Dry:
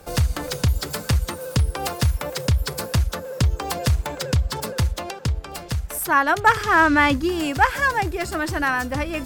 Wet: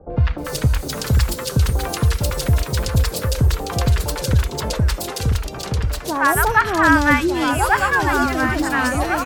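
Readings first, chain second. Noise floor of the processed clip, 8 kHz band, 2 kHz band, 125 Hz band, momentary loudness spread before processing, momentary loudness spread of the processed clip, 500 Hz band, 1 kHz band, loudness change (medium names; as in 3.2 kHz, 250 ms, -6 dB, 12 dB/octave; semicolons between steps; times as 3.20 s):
-30 dBFS, +4.0 dB, +2.5 dB, +4.0 dB, 10 LU, 8 LU, +3.0 dB, +2.0 dB, +3.0 dB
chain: three bands offset in time lows, mids, highs 100/380 ms, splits 850/3000 Hz; ever faster or slower copies 453 ms, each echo -2 st, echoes 2, each echo -6 dB; trim +3 dB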